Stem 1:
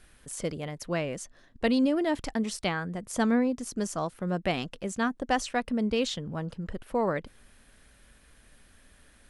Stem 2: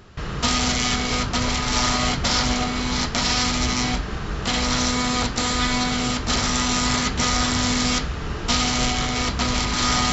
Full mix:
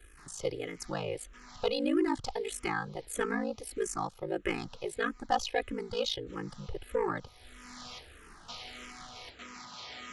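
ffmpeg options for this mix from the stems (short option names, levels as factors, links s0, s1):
-filter_complex "[0:a]aecho=1:1:2.4:0.9,asoftclip=type=tanh:threshold=0.168,aeval=exprs='val(0)*sin(2*PI*27*n/s)':c=same,volume=1.19,asplit=2[s0][s1];[1:a]acrossover=split=4900[s2][s3];[s3]acompressor=threshold=0.0158:ratio=4:attack=1:release=60[s4];[s2][s4]amix=inputs=2:normalize=0,highpass=f=540:p=1,volume=0.126[s5];[s1]apad=whole_len=446716[s6];[s5][s6]sidechaincompress=threshold=0.00631:ratio=12:attack=11:release=471[s7];[s0][s7]amix=inputs=2:normalize=0,asplit=2[s8][s9];[s9]afreqshift=-1.6[s10];[s8][s10]amix=inputs=2:normalize=1"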